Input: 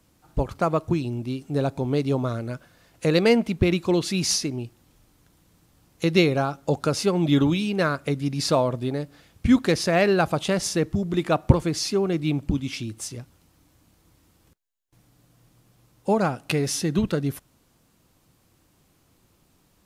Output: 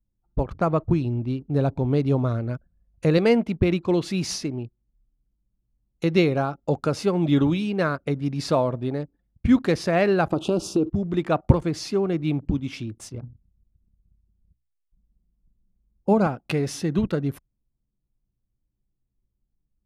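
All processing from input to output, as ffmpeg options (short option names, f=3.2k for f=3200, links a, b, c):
-filter_complex "[0:a]asettb=1/sr,asplit=3[a][b][c];[a]atrim=end=0.524[d];[b]atrim=start=0.52:end=3.18,asetpts=PTS-STARTPTS,afade=t=in:d=0.004:c=qsin,afade=t=out:st=2.656:d=0.004:c=qsin,lowshelf=f=110:g=10.5,bandreject=f=7.7k:w=13[e];[c]atrim=start=3.176[f];[d][e]acrossfade=d=0.004:c1=hsin:c2=qsin[g];[g][f]acrossfade=d=0.004:c1=qsin:c2=hsin,asettb=1/sr,asplit=3[h][i][j];[h]atrim=end=10.324[k];[i]atrim=start=10.32:end=10.9,asetpts=PTS-STARTPTS,afade=t=in:d=0.004:c=qsin,afade=t=out:st=0.576:d=0.004:c=qsin,asuperstop=centerf=1900:order=8:qfactor=1.8,equalizer=f=330:t=o:w=0.67:g=13.5,acompressor=threshold=-16dB:ratio=10:attack=3.2:release=140:knee=1:detection=peak[l];[j]atrim=start=10.896[m];[k][l]acrossfade=d=0.004:c1=hsin:c2=qsin[n];[n][m]acrossfade=d=0.004:c1=qsin:c2=hsin,asettb=1/sr,asplit=3[o][p][q];[o]atrim=end=13.144[r];[p]atrim=start=13.14:end=16.27,asetpts=PTS-STARTPTS,afade=t=in:d=0.004:c=qsin,afade=t=out:st=3.126:d=0.004:c=qsin,asuperstop=centerf=1800:order=8:qfactor=5.7,lowshelf=f=240:g=8,bandreject=f=60:t=h:w=6,bandreject=f=120:t=h:w=6,bandreject=f=180:t=h:w=6,bandreject=f=240:t=h:w=6,bandreject=f=300:t=h:w=6[s];[q]atrim=start=16.266[t];[r][s]acrossfade=d=0.004:c1=hsin:c2=qsin[u];[u][t]acrossfade=d=0.004:c1=qsin:c2=hsin,anlmdn=0.251,highshelf=f=3.5k:g=-10"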